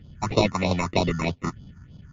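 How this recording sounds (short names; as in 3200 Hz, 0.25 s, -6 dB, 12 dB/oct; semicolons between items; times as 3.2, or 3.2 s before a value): aliases and images of a low sample rate 1600 Hz, jitter 0%; phasing stages 4, 3.2 Hz, lowest notch 500–1800 Hz; MP3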